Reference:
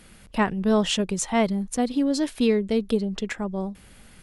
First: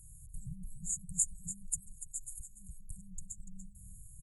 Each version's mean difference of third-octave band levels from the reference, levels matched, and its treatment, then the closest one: 19.0 dB: brick-wall FIR band-stop 160–6600 Hz; on a send: echo 0.29 s -11.5 dB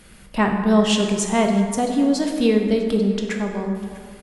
6.0 dB: on a send: echo 0.648 s -22.5 dB; on the sum: plate-style reverb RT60 2.1 s, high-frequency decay 0.5×, DRR 2 dB; gain +2 dB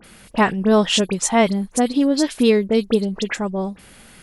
2.5 dB: low shelf 120 Hz -10 dB; dispersion highs, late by 43 ms, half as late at 2800 Hz; gain +7 dB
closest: third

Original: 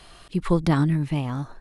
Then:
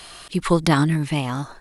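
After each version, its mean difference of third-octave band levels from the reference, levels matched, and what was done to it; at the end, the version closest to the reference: 4.0 dB: tilt +2 dB/oct; gain +6.5 dB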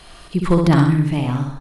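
3.0 dB: feedback echo 64 ms, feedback 45%, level -4 dB; gain +4.5 dB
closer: second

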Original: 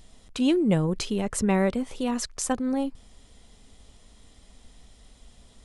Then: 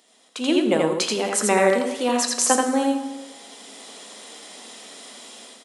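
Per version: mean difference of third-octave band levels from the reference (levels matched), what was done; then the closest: 10.0 dB: on a send: echo 83 ms -3 dB; on the sum: plate-style reverb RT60 1.1 s, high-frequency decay 0.95×, DRR 8 dB; AGC gain up to 16.5 dB; Bessel high-pass 390 Hz, order 8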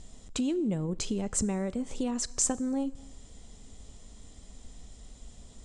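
5.0 dB: tilt shelf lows +4 dB, about 710 Hz; compressor 6:1, threshold -28 dBFS, peak gain reduction 13 dB; synth low-pass 7500 Hz, resonance Q 3.7; plate-style reverb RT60 1.1 s, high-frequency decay 0.9×, DRR 18.5 dB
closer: second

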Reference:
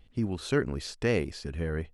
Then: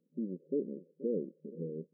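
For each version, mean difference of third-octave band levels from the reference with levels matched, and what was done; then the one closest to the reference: 15.5 dB: rattling part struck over -37 dBFS, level -17 dBFS; FFT band-pass 160–580 Hz; on a send: echo 0.476 s -17 dB; on the sum: gain -6 dB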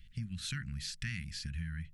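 10.5 dB: Chebyshev band-stop 180–1700 Hz, order 3; compressor, threshold -39 dBFS, peak gain reduction 10.5 dB; notches 50/100/150/200/250/300/350/400/450 Hz; gain +3.5 dB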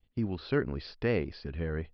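3.0 dB: expander -48 dBFS; dynamic EQ 3700 Hz, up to -4 dB, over -47 dBFS, Q 1.1; downsampling 11025 Hz; gain -2 dB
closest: third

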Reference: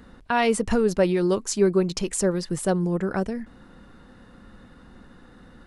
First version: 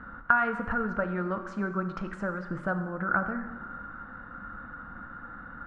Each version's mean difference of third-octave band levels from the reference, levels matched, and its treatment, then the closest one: 8.0 dB: bell 410 Hz -15 dB 0.25 oct; compressor 4:1, threshold -31 dBFS, peak gain reduction 12 dB; synth low-pass 1400 Hz, resonance Q 9.1; plate-style reverb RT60 1.5 s, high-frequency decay 0.8×, DRR 7 dB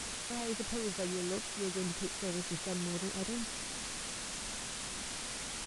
17.0 dB: median filter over 41 samples; reverse; compressor 6:1, threshold -34 dBFS, peak gain reduction 17.5 dB; reverse; requantised 6-bit, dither triangular; downsampling 22050 Hz; gain -2.5 dB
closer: first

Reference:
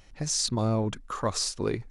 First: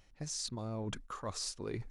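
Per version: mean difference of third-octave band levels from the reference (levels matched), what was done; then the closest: 2.5 dB: gate -43 dBFS, range -7 dB; reverse; compressor 5:1, threshold -36 dBFS, peak gain reduction 13 dB; reverse; gain -1.5 dB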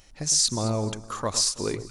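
5.0 dB: tone controls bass -2 dB, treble +8 dB; echo with dull and thin repeats by turns 0.109 s, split 1200 Hz, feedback 55%, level -11 dB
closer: first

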